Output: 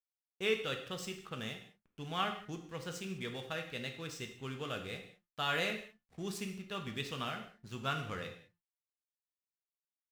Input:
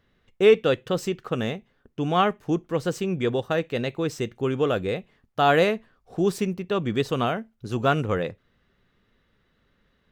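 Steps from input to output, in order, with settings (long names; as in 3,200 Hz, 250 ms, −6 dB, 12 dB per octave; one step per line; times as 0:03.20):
hum removal 175.4 Hz, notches 11
slack as between gear wheels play −39.5 dBFS
guitar amp tone stack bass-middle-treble 5-5-5
reverb whose tail is shaped and stops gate 230 ms falling, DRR 4 dB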